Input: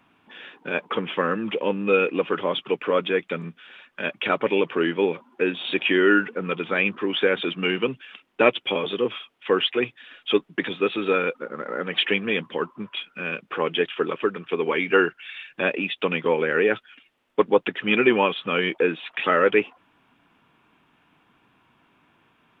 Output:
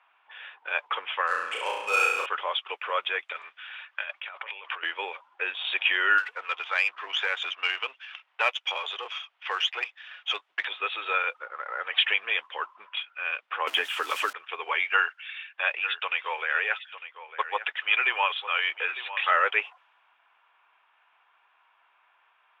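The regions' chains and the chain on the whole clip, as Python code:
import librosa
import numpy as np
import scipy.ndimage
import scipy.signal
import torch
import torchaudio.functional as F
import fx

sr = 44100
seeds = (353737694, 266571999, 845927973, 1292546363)

y = fx.chain(x, sr, fx.median_filter(points=9),
    fx.room_flutter(wall_m=5.9, rt60_s=0.89), at=(1.27, 2.26))
y = fx.chain(y, sr, fx.highpass(hz=820.0, slope=6),
    fx.over_compress(threshold_db=-35.0, ratio=-1.0), at=(3.32, 4.83))
y = fx.chain(y, sr, fx.halfwave_gain(db=-3.0),
    fx.highpass(hz=460.0, slope=6),
    fx.band_squash(depth_pct=40), at=(6.18, 10.65))
y = fx.chain(y, sr, fx.zero_step(step_db=-36.5),
    fx.peak_eq(hz=270.0, db=14.0, octaves=0.42),
    fx.band_squash(depth_pct=100), at=(13.67, 14.33))
y = fx.chain(y, sr, fx.highpass(hz=660.0, slope=6),
    fx.echo_single(ms=902, db=-13.0), at=(14.85, 19.31))
y = fx.env_lowpass(y, sr, base_hz=2800.0, full_db=-17.5)
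y = scipy.signal.sosfilt(scipy.signal.butter(4, 740.0, 'highpass', fs=sr, output='sos'), y)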